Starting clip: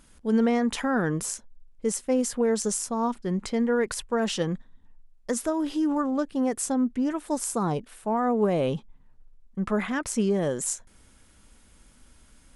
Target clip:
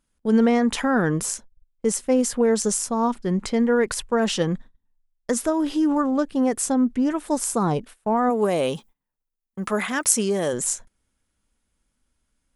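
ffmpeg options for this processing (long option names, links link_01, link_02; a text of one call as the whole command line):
ffmpeg -i in.wav -filter_complex "[0:a]agate=range=-22dB:threshold=-42dB:ratio=16:detection=peak,asplit=3[link_01][link_02][link_03];[link_01]afade=type=out:start_time=8.29:duration=0.02[link_04];[link_02]aemphasis=mode=production:type=bsi,afade=type=in:start_time=8.29:duration=0.02,afade=type=out:start_time=10.52:duration=0.02[link_05];[link_03]afade=type=in:start_time=10.52:duration=0.02[link_06];[link_04][link_05][link_06]amix=inputs=3:normalize=0,volume=4.5dB" out.wav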